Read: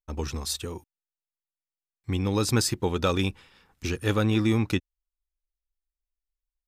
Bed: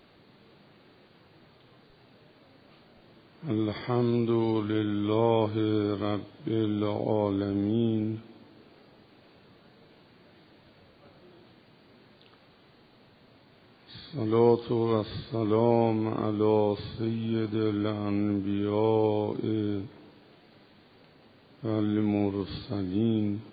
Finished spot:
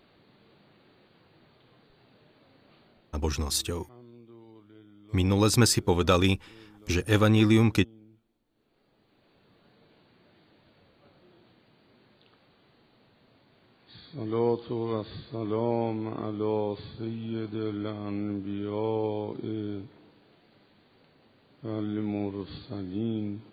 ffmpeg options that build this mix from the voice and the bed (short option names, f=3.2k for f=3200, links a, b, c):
-filter_complex "[0:a]adelay=3050,volume=2.5dB[a];[1:a]volume=18dB,afade=t=out:st=2.87:d=0.46:silence=0.0749894,afade=t=in:st=8.46:d=1.28:silence=0.0891251[b];[a][b]amix=inputs=2:normalize=0"